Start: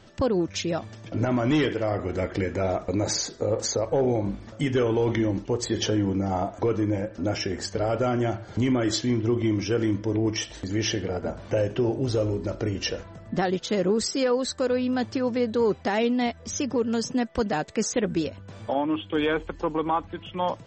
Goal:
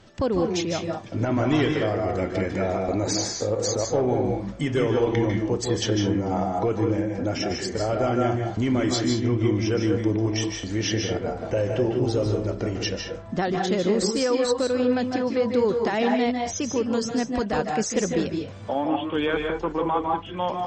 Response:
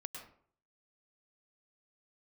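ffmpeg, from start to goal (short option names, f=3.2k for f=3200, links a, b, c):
-filter_complex "[1:a]atrim=start_sample=2205,atrim=end_sample=6615,asetrate=29547,aresample=44100[a];[0:a][a]afir=irnorm=-1:irlink=0,volume=2.5dB"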